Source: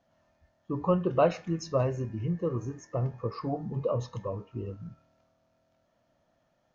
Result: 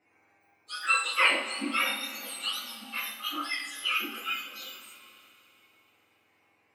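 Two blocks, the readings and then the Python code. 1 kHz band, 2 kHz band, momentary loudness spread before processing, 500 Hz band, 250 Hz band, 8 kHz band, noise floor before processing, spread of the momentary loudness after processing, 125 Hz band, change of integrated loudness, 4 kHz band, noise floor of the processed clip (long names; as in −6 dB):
+2.5 dB, +20.5 dB, 12 LU, −14.5 dB, −8.5 dB, can't be measured, −73 dBFS, 17 LU, below −30 dB, +2.5 dB, +21.0 dB, −69 dBFS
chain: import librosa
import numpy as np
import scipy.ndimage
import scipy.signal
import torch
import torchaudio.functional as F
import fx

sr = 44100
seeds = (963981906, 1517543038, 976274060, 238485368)

y = fx.octave_mirror(x, sr, pivot_hz=1200.0)
y = fx.bass_treble(y, sr, bass_db=-10, treble_db=-14)
y = fx.rev_double_slope(y, sr, seeds[0], early_s=0.42, late_s=3.4, knee_db=-18, drr_db=-6.5)
y = F.gain(torch.from_numpy(y), 2.5).numpy()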